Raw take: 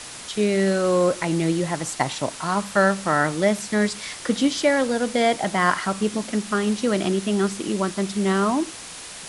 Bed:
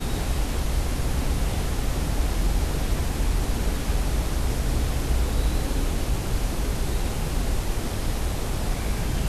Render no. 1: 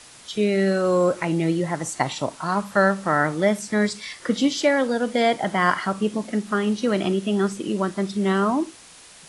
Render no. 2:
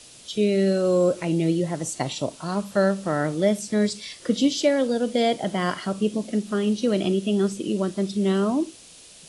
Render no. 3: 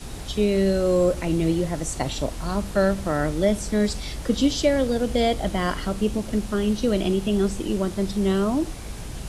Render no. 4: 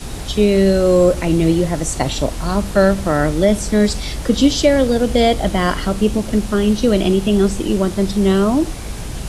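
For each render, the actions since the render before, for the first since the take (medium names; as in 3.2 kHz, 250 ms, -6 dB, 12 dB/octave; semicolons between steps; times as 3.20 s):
noise print and reduce 9 dB
high-order bell 1.3 kHz -9 dB
add bed -9 dB
trim +7.5 dB; peak limiter -2 dBFS, peak gain reduction 1.5 dB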